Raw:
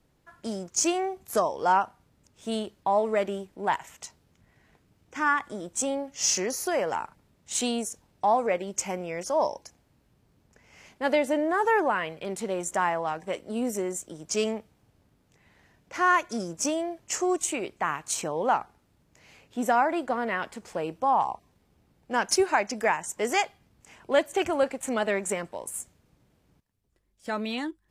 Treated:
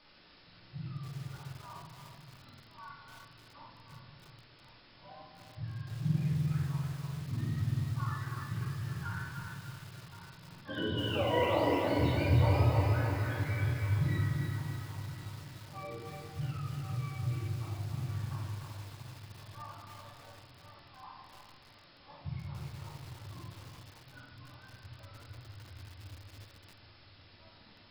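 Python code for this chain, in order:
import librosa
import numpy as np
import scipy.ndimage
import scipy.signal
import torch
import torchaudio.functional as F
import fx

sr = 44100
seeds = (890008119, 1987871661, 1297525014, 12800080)

p1 = fx.octave_mirror(x, sr, pivot_hz=930.0)
p2 = fx.doppler_pass(p1, sr, speed_mps=11, closest_m=6.0, pass_at_s=11.68)
p3 = p2 + fx.echo_heads(p2, sr, ms=357, heads='first and third', feedback_pct=43, wet_db=-12.5, dry=0)
p4 = fx.env_phaser(p3, sr, low_hz=340.0, high_hz=1600.0, full_db=-30.0)
p5 = fx.high_shelf(p4, sr, hz=2500.0, db=-5.5)
p6 = fx.quant_dither(p5, sr, seeds[0], bits=8, dither='triangular')
p7 = p5 + F.gain(torch.from_numpy(p6), -4.0).numpy()
p8 = fx.brickwall_lowpass(p7, sr, high_hz=5400.0)
p9 = fx.low_shelf(p8, sr, hz=250.0, db=5.5)
p10 = fx.room_shoebox(p9, sr, seeds[1], volume_m3=570.0, walls='mixed', distance_m=2.5)
p11 = fx.echo_crushed(p10, sr, ms=297, feedback_pct=55, bits=7, wet_db=-3.5)
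y = F.gain(torch.from_numpy(p11), -8.5).numpy()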